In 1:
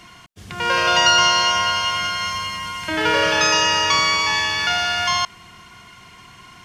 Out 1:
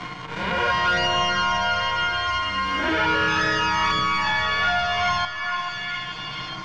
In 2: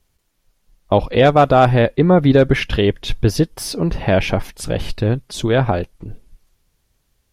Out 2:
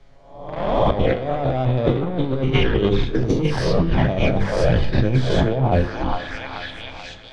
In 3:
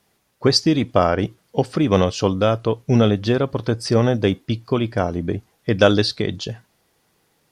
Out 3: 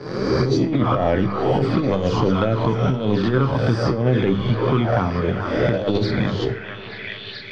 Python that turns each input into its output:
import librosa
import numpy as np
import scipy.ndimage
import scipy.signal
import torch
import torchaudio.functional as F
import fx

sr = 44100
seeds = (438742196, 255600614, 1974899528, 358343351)

p1 = fx.spec_swells(x, sr, rise_s=0.8)
p2 = fx.notch(p1, sr, hz=2700.0, q=11.0)
p3 = fx.env_flanger(p2, sr, rest_ms=7.3, full_db=-10.0)
p4 = fx.leveller(p3, sr, passes=2)
p5 = fx.high_shelf(p4, sr, hz=3900.0, db=-9.5)
p6 = fx.hum_notches(p5, sr, base_hz=50, count=10)
p7 = p6 + fx.echo_stepped(p6, sr, ms=434, hz=1300.0, octaves=0.7, feedback_pct=70, wet_db=-8, dry=0)
p8 = fx.over_compress(p7, sr, threshold_db=-13.0, ratio=-0.5)
p9 = fx.air_absorb(p8, sr, metres=130.0)
p10 = fx.comb_fb(p9, sr, f0_hz=65.0, decay_s=0.28, harmonics='all', damping=0.0, mix_pct=60)
p11 = fx.rev_freeverb(p10, sr, rt60_s=2.1, hf_ratio=0.4, predelay_ms=10, drr_db=18.0)
y = fx.band_squash(p11, sr, depth_pct=70)